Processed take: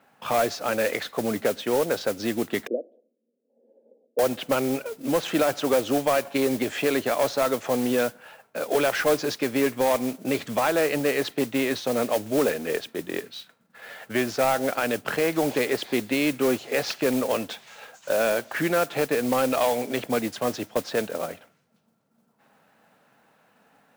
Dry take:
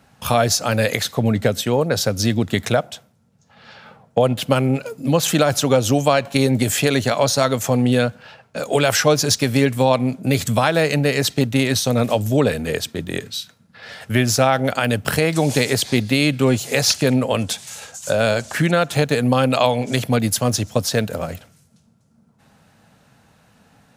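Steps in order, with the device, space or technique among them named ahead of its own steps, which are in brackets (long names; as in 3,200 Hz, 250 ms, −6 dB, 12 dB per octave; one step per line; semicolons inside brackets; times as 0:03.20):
carbon microphone (band-pass filter 310–2,600 Hz; soft clipping −12 dBFS, distortion −16 dB; noise that follows the level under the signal 13 dB)
0:02.67–0:04.19: elliptic band-pass filter 240–540 Hz, stop band 50 dB
dynamic equaliser 340 Hz, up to +4 dB, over −37 dBFS, Q 2.4
level −3 dB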